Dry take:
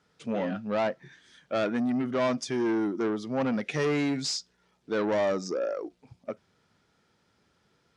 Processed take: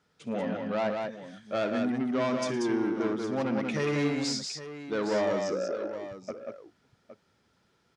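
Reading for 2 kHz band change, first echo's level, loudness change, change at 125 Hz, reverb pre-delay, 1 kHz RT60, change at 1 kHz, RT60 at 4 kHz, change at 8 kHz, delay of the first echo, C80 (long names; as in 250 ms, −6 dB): −0.5 dB, −15.5 dB, −1.5 dB, 0.0 dB, no reverb audible, no reverb audible, −0.5 dB, no reverb audible, −0.5 dB, 62 ms, no reverb audible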